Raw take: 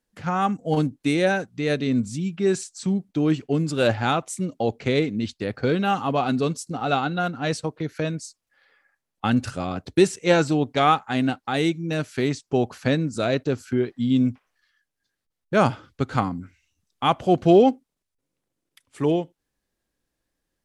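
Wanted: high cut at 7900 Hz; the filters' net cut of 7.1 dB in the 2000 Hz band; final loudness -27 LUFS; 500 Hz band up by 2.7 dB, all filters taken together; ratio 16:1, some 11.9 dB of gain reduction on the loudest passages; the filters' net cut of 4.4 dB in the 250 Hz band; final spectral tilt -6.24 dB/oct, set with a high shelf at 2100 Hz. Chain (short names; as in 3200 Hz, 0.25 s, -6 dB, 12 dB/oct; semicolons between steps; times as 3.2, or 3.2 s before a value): LPF 7900 Hz; bell 250 Hz -9 dB; bell 500 Hz +7 dB; bell 2000 Hz -7.5 dB; high shelf 2100 Hz -5 dB; compressor 16:1, threshold -21 dBFS; gain +1.5 dB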